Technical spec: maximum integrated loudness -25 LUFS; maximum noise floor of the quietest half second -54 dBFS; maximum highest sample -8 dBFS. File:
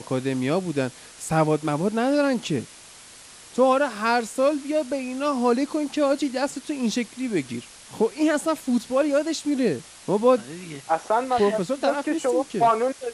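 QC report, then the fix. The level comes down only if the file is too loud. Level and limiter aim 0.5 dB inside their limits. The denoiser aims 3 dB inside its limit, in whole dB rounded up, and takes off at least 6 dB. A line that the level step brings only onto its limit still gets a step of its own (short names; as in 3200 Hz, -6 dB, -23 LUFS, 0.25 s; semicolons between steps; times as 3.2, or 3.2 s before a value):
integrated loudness -23.5 LUFS: fail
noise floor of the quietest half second -46 dBFS: fail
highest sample -7.5 dBFS: fail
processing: denoiser 9 dB, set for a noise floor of -46 dBFS; gain -2 dB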